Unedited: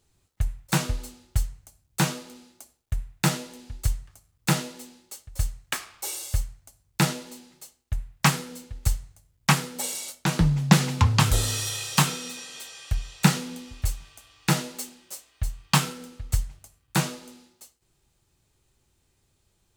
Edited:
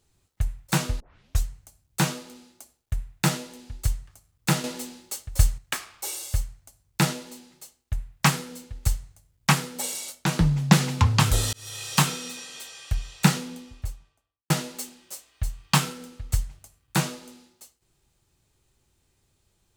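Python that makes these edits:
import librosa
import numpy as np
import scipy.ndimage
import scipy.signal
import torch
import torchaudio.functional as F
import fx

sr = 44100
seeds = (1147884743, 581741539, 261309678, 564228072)

y = fx.studio_fade_out(x, sr, start_s=13.26, length_s=1.24)
y = fx.edit(y, sr, fx.tape_start(start_s=1.0, length_s=0.43),
    fx.clip_gain(start_s=4.64, length_s=0.94, db=7.5),
    fx.fade_in_span(start_s=11.53, length_s=0.41), tone=tone)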